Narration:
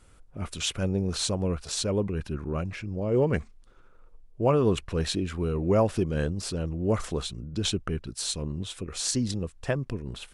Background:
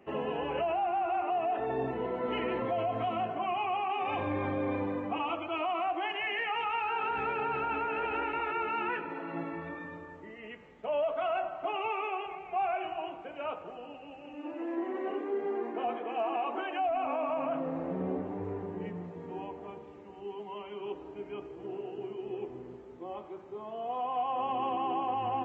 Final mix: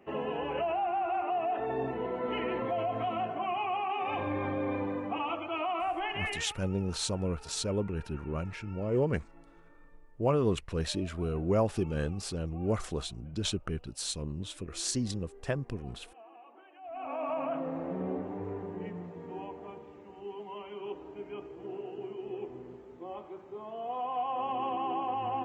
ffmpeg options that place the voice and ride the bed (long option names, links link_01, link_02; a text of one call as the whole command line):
ffmpeg -i stem1.wav -i stem2.wav -filter_complex "[0:a]adelay=5800,volume=-4.5dB[link_01];[1:a]volume=20dB,afade=type=out:start_time=6.25:duration=0.31:silence=0.0891251,afade=type=in:start_time=16.81:duration=0.5:silence=0.0944061[link_02];[link_01][link_02]amix=inputs=2:normalize=0" out.wav